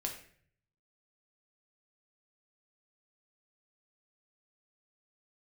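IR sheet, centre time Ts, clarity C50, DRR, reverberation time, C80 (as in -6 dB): 23 ms, 7.5 dB, 1.0 dB, 0.55 s, 11.0 dB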